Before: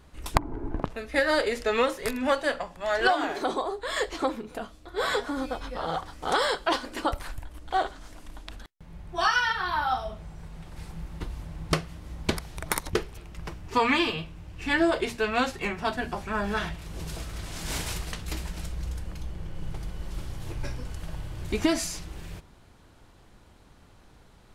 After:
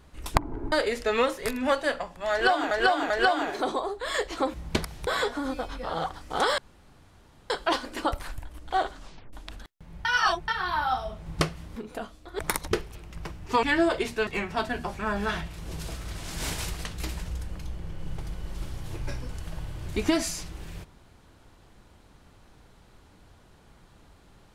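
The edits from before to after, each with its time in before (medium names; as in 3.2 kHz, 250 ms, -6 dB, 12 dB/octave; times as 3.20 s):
0.72–1.32 s: delete
2.92–3.31 s: loop, 3 plays
4.36–4.99 s: swap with 12.08–12.61 s
6.50 s: insert room tone 0.92 s
7.99 s: tape stop 0.34 s
9.05–9.48 s: reverse
10.26–11.58 s: delete
13.85–14.65 s: delete
15.29–15.55 s: delete
18.56–18.84 s: delete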